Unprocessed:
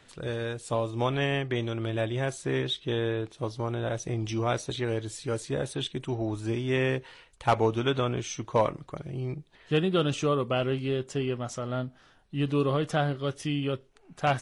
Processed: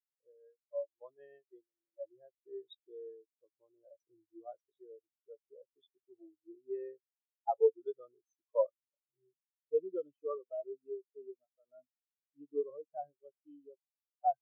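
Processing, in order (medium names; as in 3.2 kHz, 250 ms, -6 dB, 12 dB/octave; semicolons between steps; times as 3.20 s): 0.68–2.05 s: gate -28 dBFS, range -7 dB; tone controls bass -13 dB, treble +2 dB; in parallel at -4.5 dB: saturation -25.5 dBFS, distortion -10 dB; on the sum: spectral contrast expander 4:1; trim -8 dB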